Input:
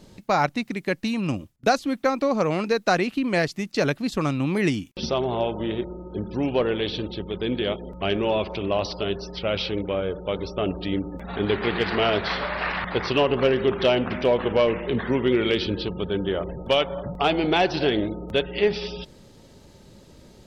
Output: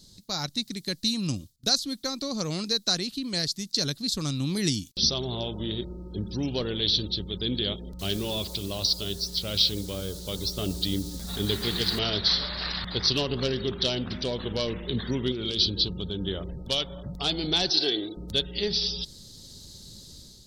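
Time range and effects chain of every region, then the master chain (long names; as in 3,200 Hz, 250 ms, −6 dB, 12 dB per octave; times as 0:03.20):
0:07.99–0:11.99: hum removal 331.7 Hz, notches 2 + bit-depth reduction 8 bits, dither none
0:15.31–0:16.21: parametric band 1,900 Hz −11 dB 0.33 octaves + downward compressor, threshold −22 dBFS
0:17.70–0:18.17: high-pass filter 270 Hz + comb filter 2.6 ms, depth 56%
whole clip: high shelf with overshoot 3,200 Hz +8 dB, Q 3; automatic gain control gain up to 7.5 dB; parametric band 740 Hz −14 dB 2.9 octaves; level −4 dB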